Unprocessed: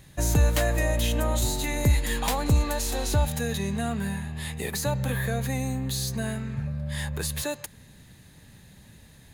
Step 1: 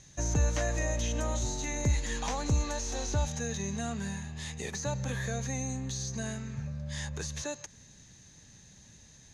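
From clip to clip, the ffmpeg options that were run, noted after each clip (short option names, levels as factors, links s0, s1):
-filter_complex "[0:a]lowpass=f=6200:t=q:w=9.4,acrossover=split=2600[s0][s1];[s1]acompressor=threshold=0.0282:ratio=4:attack=1:release=60[s2];[s0][s2]amix=inputs=2:normalize=0,volume=0.473"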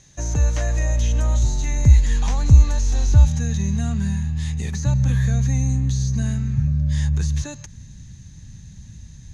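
-af "asubboost=boost=10:cutoff=150,volume=1.41"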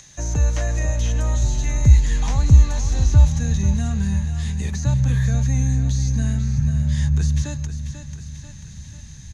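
-filter_complex "[0:a]aecho=1:1:491|982|1473|1964|2455:0.299|0.134|0.0605|0.0272|0.0122,acrossover=split=440|620[s0][s1][s2];[s2]acompressor=mode=upward:threshold=0.01:ratio=2.5[s3];[s0][s1][s3]amix=inputs=3:normalize=0"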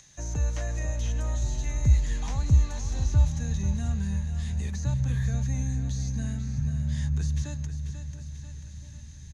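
-filter_complex "[0:a]asplit=2[s0][s1];[s1]adelay=683,lowpass=f=1100:p=1,volume=0.211,asplit=2[s2][s3];[s3]adelay=683,lowpass=f=1100:p=1,volume=0.55,asplit=2[s4][s5];[s5]adelay=683,lowpass=f=1100:p=1,volume=0.55,asplit=2[s6][s7];[s7]adelay=683,lowpass=f=1100:p=1,volume=0.55,asplit=2[s8][s9];[s9]adelay=683,lowpass=f=1100:p=1,volume=0.55,asplit=2[s10][s11];[s11]adelay=683,lowpass=f=1100:p=1,volume=0.55[s12];[s0][s2][s4][s6][s8][s10][s12]amix=inputs=7:normalize=0,volume=0.376"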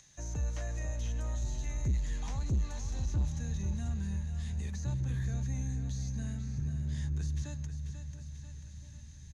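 -af "asoftclip=type=tanh:threshold=0.106,volume=0.531"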